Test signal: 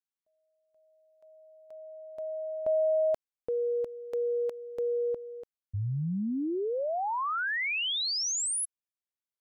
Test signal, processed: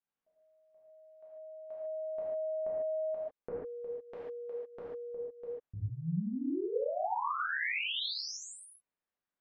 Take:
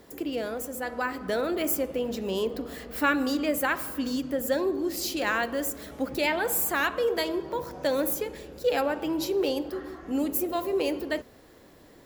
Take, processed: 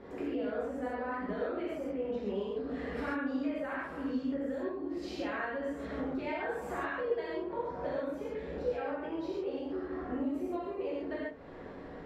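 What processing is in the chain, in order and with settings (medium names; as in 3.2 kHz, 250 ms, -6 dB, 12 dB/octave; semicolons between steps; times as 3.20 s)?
low-pass 1.9 kHz 12 dB/octave; compression 8:1, threshold -42 dBFS; gated-style reverb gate 170 ms flat, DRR -8 dB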